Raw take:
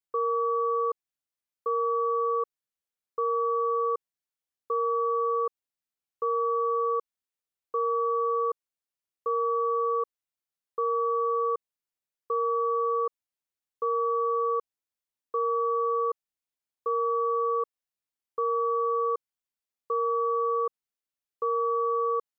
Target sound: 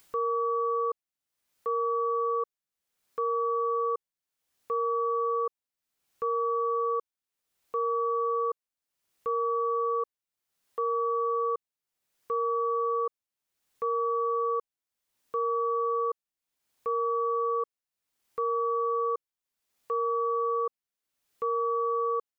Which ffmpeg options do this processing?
-af "acompressor=mode=upward:threshold=-37dB:ratio=2.5,volume=-1.5dB"

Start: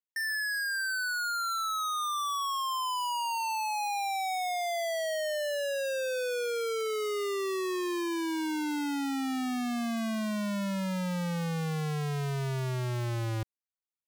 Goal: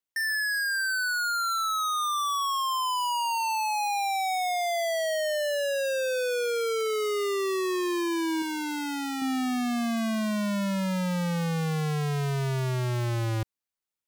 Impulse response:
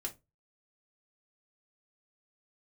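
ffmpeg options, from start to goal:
-filter_complex "[0:a]asettb=1/sr,asplit=3[a][b][c];[a]atrim=end=8.424[d];[b]atrim=start=8.42:end=9.22,asetpts=PTS-STARTPTS,afade=t=in:d=0.004:c=qsin,afade=t=out:st=0.796:d=0.004:c=qsin,lowshelf=f=480:g=-7[e];[c]atrim=start=9.216[f];[d][e]acrossfade=d=0.004:c1=hsin:c2=qsin[g];[g][f]acrossfade=d=0.004:c1=qsin:c2=hsin,volume=4dB"

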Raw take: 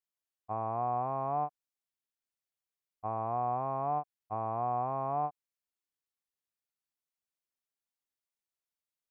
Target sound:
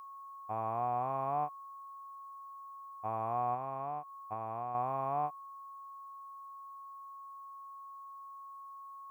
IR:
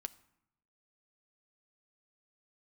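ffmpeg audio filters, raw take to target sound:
-filter_complex "[0:a]aeval=exprs='val(0)+0.00501*sin(2*PI*1100*n/s)':c=same,crystalizer=i=6.5:c=0,asettb=1/sr,asplit=3[a][b][c];[a]atrim=end=3.544[d];[b]atrim=start=3.54:end=4.75,asetpts=PTS-STARTPTS,afade=t=in:d=0.004:c=qsin,afade=t=out:st=1.206:d=0.004:c=qsin,acompressor=threshold=-32dB:ratio=5[e];[c]atrim=start=4.746[f];[d][e]acrossfade=d=0.004:c1=hsin:c2=qsin[g];[g][f]acrossfade=d=0.004:c1=qsin:c2=hsin,volume=-3.5dB"

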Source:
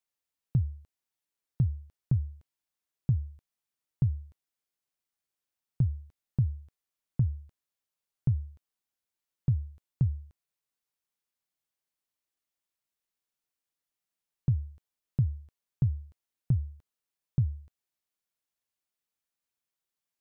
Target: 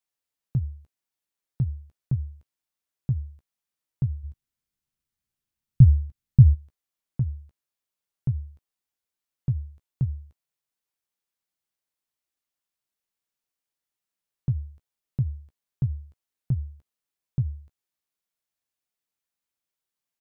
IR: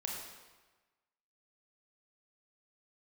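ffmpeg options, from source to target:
-filter_complex "[0:a]asplit=3[a][b][c];[a]afade=t=out:st=4.23:d=0.02[d];[b]asubboost=boost=6:cutoff=210,afade=t=in:st=4.23:d=0.02,afade=t=out:st=6.53:d=0.02[e];[c]afade=t=in:st=6.53:d=0.02[f];[d][e][f]amix=inputs=3:normalize=0,asplit=2[g][h];[h]adelay=15,volume=-11dB[i];[g][i]amix=inputs=2:normalize=0"

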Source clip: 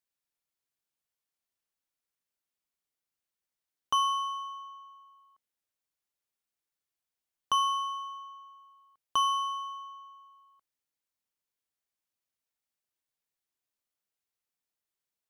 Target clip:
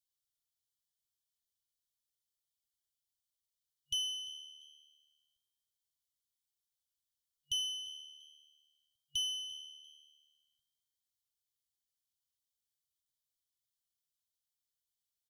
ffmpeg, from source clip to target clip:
-filter_complex "[0:a]asplit=3[a][b][c];[b]adelay=345,afreqshift=75,volume=-20dB[d];[c]adelay=690,afreqshift=150,volume=-30.2dB[e];[a][d][e]amix=inputs=3:normalize=0,afftfilt=real='re*(1-between(b*sr/4096,140,2900))':imag='im*(1-between(b*sr/4096,140,2900))':win_size=4096:overlap=0.75"

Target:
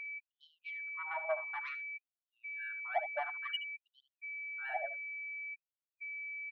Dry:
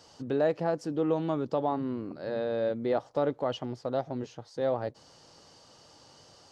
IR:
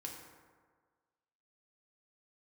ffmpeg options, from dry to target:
-filter_complex "[0:a]afftfilt=real='re*gte(hypot(re,im),0.126)':imag='im*gte(hypot(re,im),0.126)':win_size=1024:overlap=0.75,highshelf=f=2.6k:g=-2,asplit=2[a][b];[b]alimiter=level_in=1dB:limit=-24dB:level=0:latency=1:release=20,volume=-1dB,volume=1dB[c];[a][c]amix=inputs=2:normalize=0,aeval=exprs='val(0)+0.00224*(sin(2*PI*50*n/s)+sin(2*PI*2*50*n/s)/2+sin(2*PI*3*50*n/s)/3+sin(2*PI*4*50*n/s)/4+sin(2*PI*5*50*n/s)/5)':c=same,highpass=140,equalizer=f=160:t=q:w=4:g=8,equalizer=f=260:t=q:w=4:g=-8,equalizer=f=370:t=q:w=4:g=-3,equalizer=f=610:t=q:w=4:g=-3,equalizer=f=1.7k:t=q:w=4:g=6,equalizer=f=2.8k:t=q:w=4:g=3,lowpass=f=3.9k:w=0.5412,lowpass=f=3.9k:w=1.3066,asoftclip=type=tanh:threshold=-22.5dB,aeval=exprs='val(0)+0.00794*sin(2*PI*2300*n/s)':c=same,asplit=2[d][e];[e]aecho=0:1:74:0.237[f];[d][f]amix=inputs=2:normalize=0,afftfilt=real='re*gte(b*sr/1024,580*pow(3000/580,0.5+0.5*sin(2*PI*0.56*pts/sr)))':imag='im*gte(b*sr/1024,580*pow(3000/580,0.5+0.5*sin(2*PI*0.56*pts/sr)))':win_size=1024:overlap=0.75,volume=1dB"

